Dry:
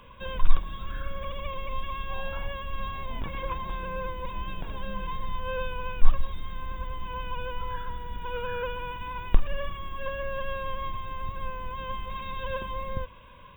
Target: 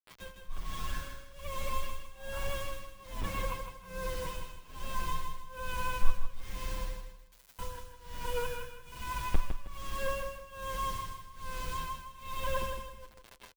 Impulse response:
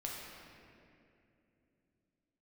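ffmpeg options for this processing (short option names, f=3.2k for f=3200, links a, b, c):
-filter_complex "[0:a]asettb=1/sr,asplit=3[a][b][c];[a]atrim=end=6.964[d];[b]atrim=start=6.96:end=7.59,asetpts=PTS-STARTPTS,afade=t=in:d=0.004:c=qsin,afade=t=out:st=0.626:d=0.004:c=qsin,aderivative[e];[c]atrim=start=7.586[f];[d][e]acrossfade=d=0.004:c1=hsin:c2=qsin[g];[g][f]acrossfade=d=0.004:c1=qsin:c2=hsin,asettb=1/sr,asplit=3[h][i][j];[h]atrim=end=11.804[k];[i]atrim=start=11.8:end=12.46,asetpts=PTS-STARTPTS,afade=t=in:d=0.004:c=qsin,afade=t=out:st=0.656:d=0.004:c=qsin,bandreject=f=50:t=h:w=6,bandreject=f=100:t=h:w=6,bandreject=f=150:t=h:w=6,bandreject=f=200:t=h:w=6[l];[j]atrim=start=12.456[m];[k][l]acrossfade=d=0.004:c1=hsin:c2=qsin[n];[n][m]acrossfade=d=0.004:c1=qsin:c2=hsin,acrusher=bits=6:mix=0:aa=0.000001,tremolo=f=1.2:d=0.99,aecho=1:1:158|316|474|632:0.447|0.134|0.0402|0.0121,asplit=2[o][p];[p]adelay=7.7,afreqshift=-0.28[q];[o][q]amix=inputs=2:normalize=1,volume=2dB"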